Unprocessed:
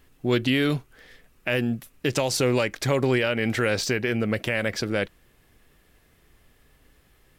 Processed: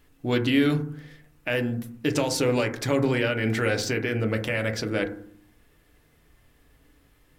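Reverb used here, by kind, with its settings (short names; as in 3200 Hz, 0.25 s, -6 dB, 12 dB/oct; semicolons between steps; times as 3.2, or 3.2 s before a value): FDN reverb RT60 0.57 s, low-frequency decay 1.55×, high-frequency decay 0.25×, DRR 5 dB; gain -2.5 dB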